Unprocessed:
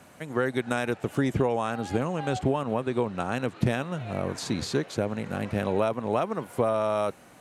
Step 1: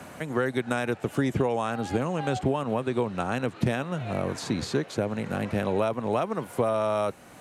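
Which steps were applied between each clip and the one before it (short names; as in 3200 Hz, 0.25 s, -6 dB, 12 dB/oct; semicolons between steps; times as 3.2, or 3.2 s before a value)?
three-band squash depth 40%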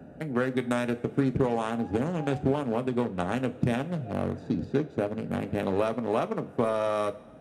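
Wiener smoothing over 41 samples; two-slope reverb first 0.28 s, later 1.9 s, from -18 dB, DRR 8.5 dB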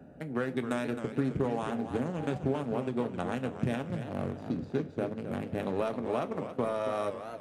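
warbling echo 0.271 s, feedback 41%, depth 200 cents, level -9.5 dB; gain -5 dB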